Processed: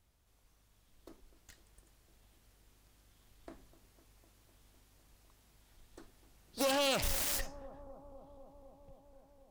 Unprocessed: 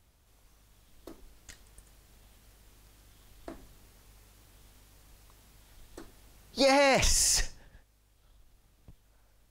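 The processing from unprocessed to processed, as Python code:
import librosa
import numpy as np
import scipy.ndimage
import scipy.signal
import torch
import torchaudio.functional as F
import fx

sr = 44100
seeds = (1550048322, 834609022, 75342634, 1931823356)

y = fx.self_delay(x, sr, depth_ms=0.26)
y = fx.echo_bbd(y, sr, ms=252, stages=2048, feedback_pct=80, wet_db=-16.5)
y = y * librosa.db_to_amplitude(-7.5)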